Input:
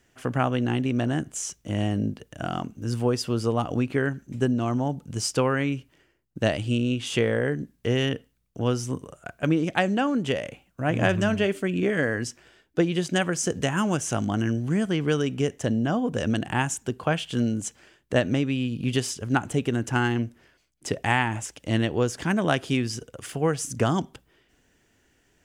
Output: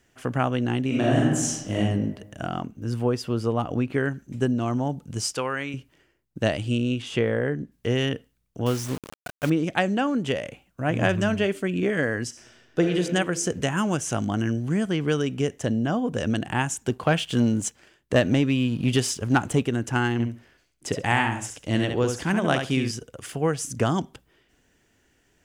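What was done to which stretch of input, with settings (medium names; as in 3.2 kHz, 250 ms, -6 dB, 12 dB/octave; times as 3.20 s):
0.87–1.76 s: reverb throw, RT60 1.1 s, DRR -5 dB
2.46–3.94 s: peaking EQ 8 kHz -6.5 dB 2 oct
5.33–5.74 s: bass shelf 460 Hz -11.5 dB
7.02–7.72 s: treble shelf 4.5 kHz -11 dB
8.66–9.50 s: word length cut 6-bit, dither none
12.28–12.93 s: reverb throw, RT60 1.9 s, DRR 2.5 dB
16.84–19.63 s: waveshaping leveller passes 1
20.13–22.91 s: feedback delay 68 ms, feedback 16%, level -6 dB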